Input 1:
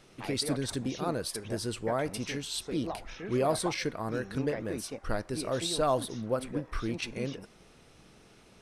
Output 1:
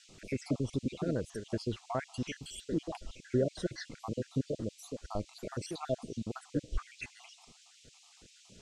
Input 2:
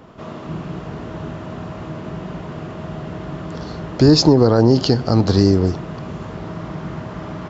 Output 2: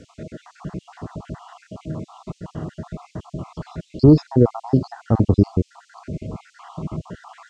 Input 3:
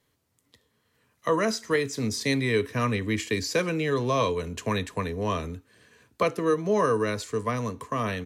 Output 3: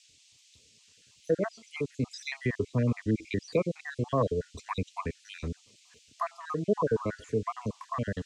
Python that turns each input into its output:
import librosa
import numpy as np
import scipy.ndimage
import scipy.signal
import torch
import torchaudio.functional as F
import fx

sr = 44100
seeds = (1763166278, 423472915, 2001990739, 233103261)

y = fx.spec_dropout(x, sr, seeds[0], share_pct=66)
y = fx.env_lowpass_down(y, sr, base_hz=1800.0, full_db=-25.5)
y = fx.low_shelf(y, sr, hz=400.0, db=6.5)
y = fx.dmg_noise_band(y, sr, seeds[1], low_hz=2400.0, high_hz=7800.0, level_db=-58.0)
y = y * 10.0 ** (-3.5 / 20.0)